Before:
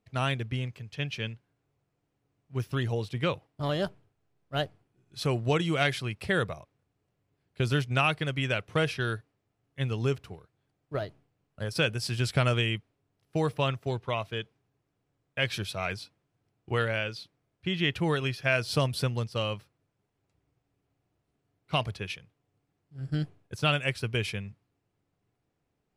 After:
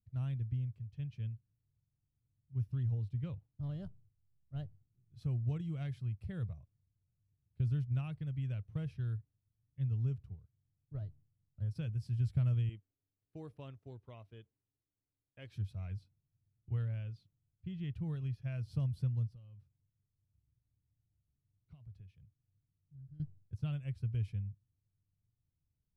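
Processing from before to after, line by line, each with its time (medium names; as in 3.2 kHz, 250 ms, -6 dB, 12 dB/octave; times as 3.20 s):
12.69–15.56 s: resonant low shelf 210 Hz -11.5 dB, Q 1.5
19.34–23.20 s: compression 5:1, threshold -46 dBFS
whole clip: FFT filter 100 Hz 0 dB, 370 Hz -24 dB, 1.5 kHz -30 dB; trim +1 dB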